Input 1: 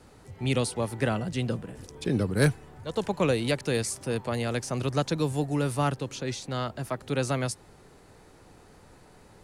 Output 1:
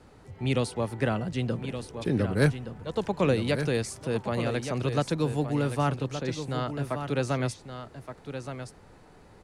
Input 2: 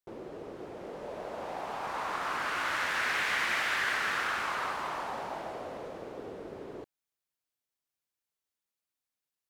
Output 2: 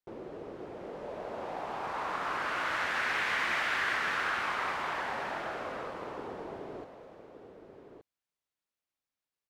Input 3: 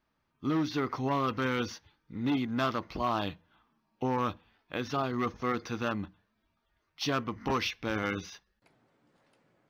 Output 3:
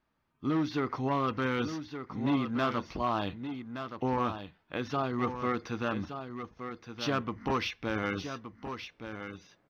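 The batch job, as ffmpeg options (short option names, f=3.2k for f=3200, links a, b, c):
-filter_complex "[0:a]highshelf=f=5.8k:g=-9.5,asplit=2[a][b];[b]aecho=0:1:1171:0.355[c];[a][c]amix=inputs=2:normalize=0"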